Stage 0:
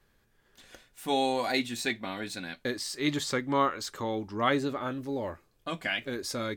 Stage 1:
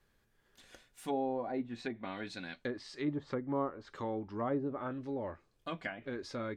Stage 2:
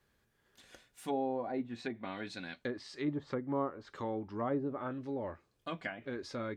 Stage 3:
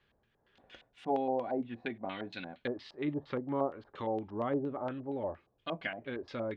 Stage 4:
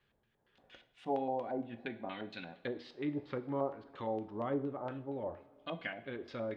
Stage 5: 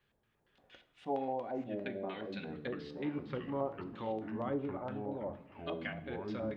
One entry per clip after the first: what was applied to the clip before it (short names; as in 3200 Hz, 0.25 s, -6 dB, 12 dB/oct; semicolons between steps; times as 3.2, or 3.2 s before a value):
treble ducked by the level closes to 730 Hz, closed at -26 dBFS; gain -5 dB
HPF 43 Hz
LFO low-pass square 4.3 Hz 740–3100 Hz
two-slope reverb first 0.51 s, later 4.6 s, from -22 dB, DRR 9.5 dB; gain -3.5 dB
echoes that change speed 0.242 s, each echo -5 st, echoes 3, each echo -6 dB; gain -1 dB